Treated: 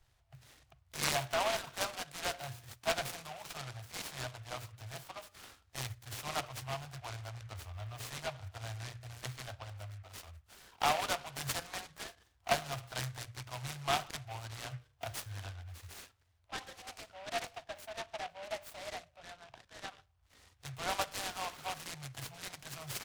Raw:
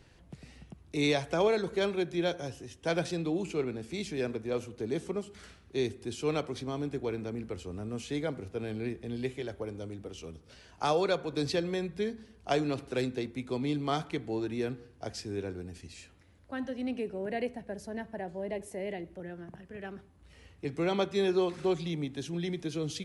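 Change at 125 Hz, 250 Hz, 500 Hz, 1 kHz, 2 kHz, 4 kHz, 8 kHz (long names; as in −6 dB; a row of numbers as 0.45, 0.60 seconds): −5.5, −19.0, −11.5, 0.0, −0.5, 0.0, +5.5 decibels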